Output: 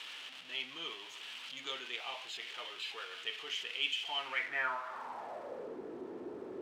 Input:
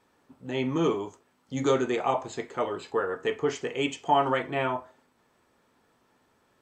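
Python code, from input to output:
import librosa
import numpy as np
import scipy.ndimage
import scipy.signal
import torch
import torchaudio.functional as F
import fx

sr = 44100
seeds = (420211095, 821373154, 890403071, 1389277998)

y = x + 0.5 * 10.0 ** (-29.5 / 20.0) * np.sign(x)
y = fx.filter_sweep_bandpass(y, sr, from_hz=3000.0, to_hz=370.0, start_s=4.18, end_s=5.81, q=4.1)
y = y * librosa.db_to_amplitude(1.0)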